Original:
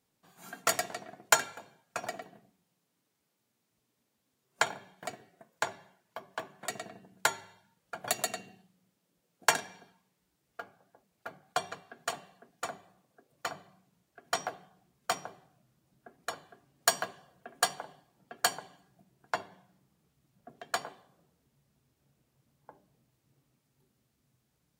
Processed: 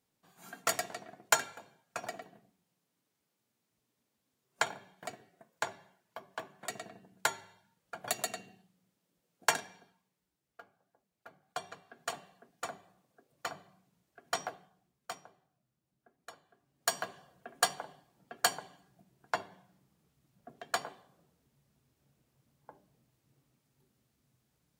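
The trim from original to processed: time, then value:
9.52 s -3 dB
10.61 s -10.5 dB
11.28 s -10.5 dB
12.14 s -2.5 dB
14.43 s -2.5 dB
15.25 s -13 dB
16.44 s -13 dB
17.17 s -0.5 dB

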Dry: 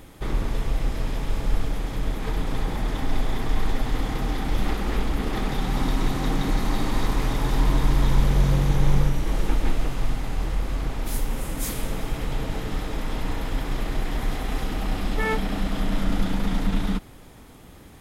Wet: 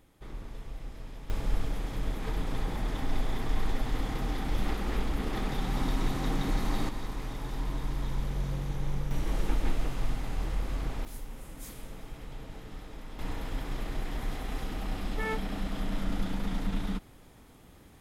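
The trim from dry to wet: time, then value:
-16.5 dB
from 1.30 s -6 dB
from 6.89 s -13 dB
from 9.11 s -6 dB
from 11.05 s -15.5 dB
from 13.19 s -8 dB

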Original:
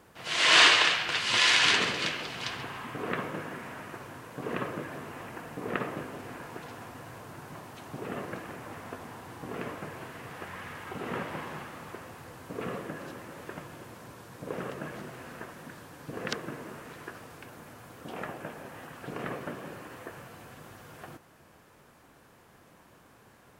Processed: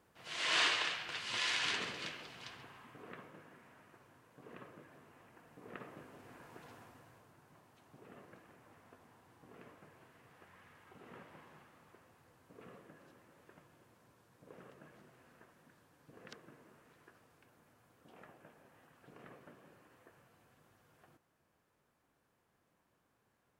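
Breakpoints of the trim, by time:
2.06 s -13 dB
3.33 s -20 dB
5.32 s -20 dB
6.71 s -12 dB
7.36 s -20 dB

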